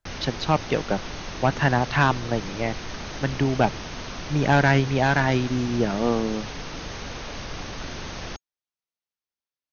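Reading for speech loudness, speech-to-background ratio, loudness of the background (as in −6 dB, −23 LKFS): −24.0 LKFS, 11.0 dB, −35.0 LKFS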